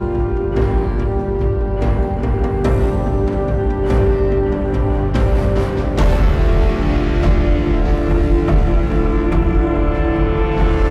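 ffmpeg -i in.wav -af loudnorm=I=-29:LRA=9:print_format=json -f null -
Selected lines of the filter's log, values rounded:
"input_i" : "-17.0",
"input_tp" : "-4.9",
"input_lra" : "1.9",
"input_thresh" : "-27.0",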